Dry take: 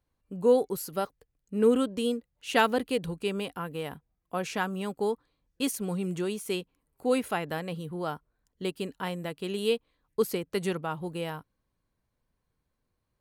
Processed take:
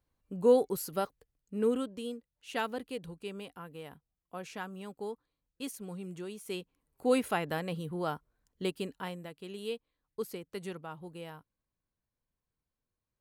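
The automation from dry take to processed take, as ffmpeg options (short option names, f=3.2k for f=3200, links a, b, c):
-af "volume=8dB,afade=t=out:st=0.91:d=1.13:silence=0.354813,afade=t=in:st=6.34:d=0.74:silence=0.334965,afade=t=out:st=8.64:d=0.66:silence=0.334965"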